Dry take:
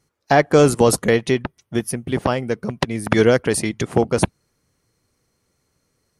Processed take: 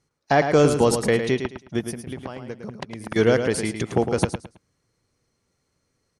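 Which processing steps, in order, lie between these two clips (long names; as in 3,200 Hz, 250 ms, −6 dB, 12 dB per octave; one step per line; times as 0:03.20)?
low-pass filter 8,800 Hz 12 dB per octave
0:01.81–0:03.16: downward compressor 12 to 1, threshold −26 dBFS, peak gain reduction 15 dB
repeating echo 108 ms, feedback 25%, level −8 dB
level −4 dB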